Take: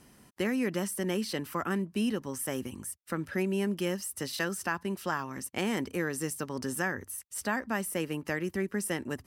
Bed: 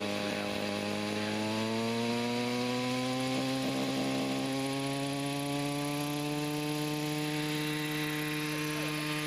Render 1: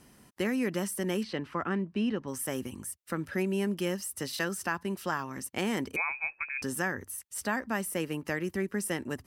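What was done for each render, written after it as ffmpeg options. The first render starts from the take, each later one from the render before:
-filter_complex "[0:a]asettb=1/sr,asplit=3[s0][s1][s2];[s0]atrim=end=1.234[s3];[s1]atrim=start=1.23:end=2.28,asetpts=PTS-STARTPTS,afade=t=in:d=0.004:c=qsin,afade=t=out:st=1.046:d=0.004:c=qsin,lowpass=3300[s4];[s2]atrim=start=2.276[s5];[s3][s4]acrossfade=d=0.004:c1=hsin:c2=qsin[s6];[s6][s5]acrossfade=d=0.004:c1=qsin:c2=hsin,asettb=1/sr,asplit=3[s7][s8][s9];[s7]atrim=end=5.964[s10];[s8]atrim=start=5.96:end=6.62,asetpts=PTS-STARTPTS,afade=t=in:d=0.004:c=qsin,afade=t=out:st=0.656:d=0.004:c=qsin,lowpass=f=2300:t=q:w=0.5098,lowpass=f=2300:t=q:w=0.6013,lowpass=f=2300:t=q:w=0.9,lowpass=f=2300:t=q:w=2.563,afreqshift=-2700[s11];[s9]atrim=start=6.616[s12];[s10][s11]acrossfade=d=0.004:c1=hsin:c2=qsin[s13];[s13][s12]acrossfade=d=0.004:c1=qsin:c2=hsin"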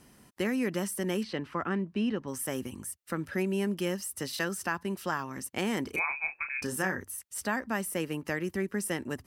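-filter_complex "[0:a]asettb=1/sr,asplit=3[s0][s1][s2];[s0]atrim=end=5.834[s3];[s1]atrim=start=5.83:end=7.01,asetpts=PTS-STARTPTS,afade=t=in:d=0.004:c=qsin,afade=t=out:st=1.176:d=0.004:c=qsin,asplit=2[s4][s5];[s5]adelay=32,volume=0.447[s6];[s4][s6]amix=inputs=2:normalize=0,atrim=end_sample=52038[s7];[s2]atrim=start=7.006[s8];[s3][s7]acrossfade=d=0.004:c1=hsin:c2=qsin[s9];[s9][s8]acrossfade=d=0.004:c1=qsin:c2=hsin"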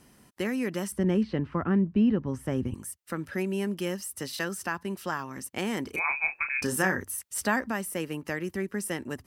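-filter_complex "[0:a]asettb=1/sr,asplit=3[s0][s1][s2];[s0]atrim=end=0.924[s3];[s1]atrim=start=0.92:end=2.74,asetpts=PTS-STARTPTS,afade=t=in:d=0.004:c=qsin,afade=t=out:st=1.816:d=0.004:c=qsin,aemphasis=mode=reproduction:type=riaa[s4];[s2]atrim=start=2.736[s5];[s3][s4]acrossfade=d=0.004:c1=hsin:c2=qsin[s6];[s6][s5]acrossfade=d=0.004:c1=qsin:c2=hsin,asplit=3[s7][s8][s9];[s7]afade=t=out:st=6.04:d=0.02[s10];[s8]acontrast=23,afade=t=in:st=6.04:d=0.02,afade=t=out:st=7.7:d=0.02[s11];[s9]afade=t=in:st=7.7:d=0.02[s12];[s10][s11][s12]amix=inputs=3:normalize=0"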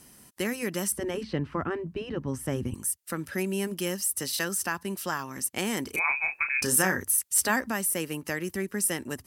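-af "afftfilt=real='re*lt(hypot(re,im),0.447)':imag='im*lt(hypot(re,im),0.447)':win_size=1024:overlap=0.75,equalizer=f=12000:t=o:w=2.1:g=11"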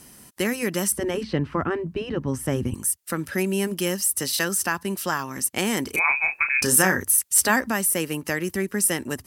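-af "volume=1.88"

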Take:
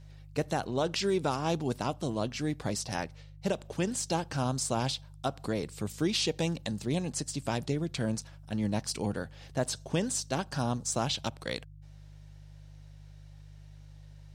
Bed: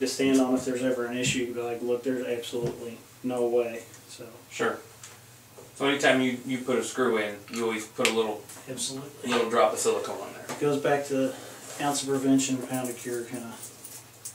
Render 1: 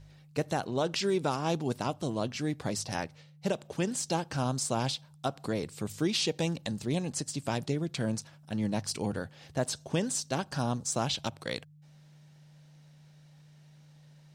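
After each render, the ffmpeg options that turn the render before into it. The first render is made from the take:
-af "bandreject=f=50:t=h:w=4,bandreject=f=100:t=h:w=4"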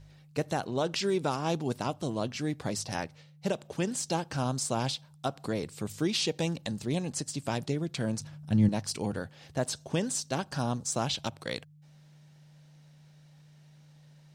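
-filter_complex "[0:a]asettb=1/sr,asplit=3[s0][s1][s2];[s0]atrim=end=8.204[s3];[s1]atrim=start=8.2:end=8.69,asetpts=PTS-STARTPTS,afade=t=in:d=0.004:c=qsin,afade=t=out:st=0.486:d=0.004:c=qsin,bass=f=250:g=12,treble=f=4000:g=0[s4];[s2]atrim=start=8.686[s5];[s3][s4]acrossfade=d=0.004:c1=hsin:c2=qsin[s6];[s6][s5]acrossfade=d=0.004:c1=qsin:c2=hsin"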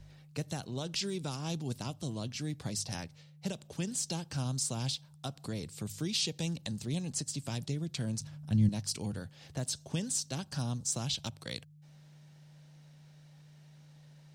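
-filter_complex "[0:a]acrossover=split=200|3000[s0][s1][s2];[s1]acompressor=threshold=0.00282:ratio=2[s3];[s0][s3][s2]amix=inputs=3:normalize=0"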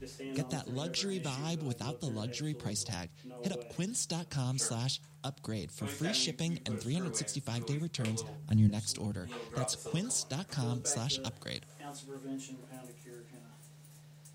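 -filter_complex "[1:a]volume=0.112[s0];[0:a][s0]amix=inputs=2:normalize=0"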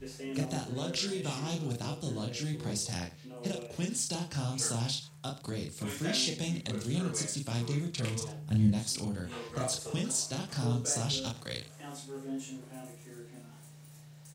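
-filter_complex "[0:a]asplit=2[s0][s1];[s1]adelay=34,volume=0.75[s2];[s0][s2]amix=inputs=2:normalize=0,aecho=1:1:84:0.188"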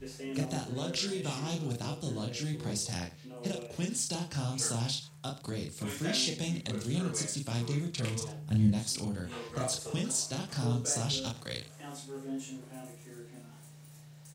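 -af anull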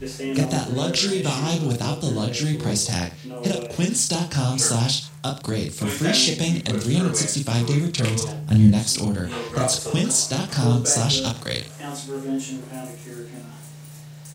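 -af "volume=3.98"

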